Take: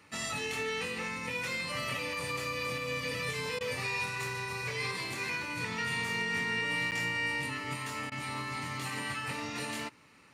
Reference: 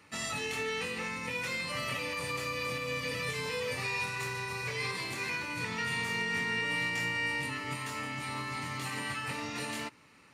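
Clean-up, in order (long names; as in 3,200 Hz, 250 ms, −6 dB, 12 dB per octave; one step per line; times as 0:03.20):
repair the gap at 0:06.91, 8.5 ms
repair the gap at 0:03.59/0:08.10, 16 ms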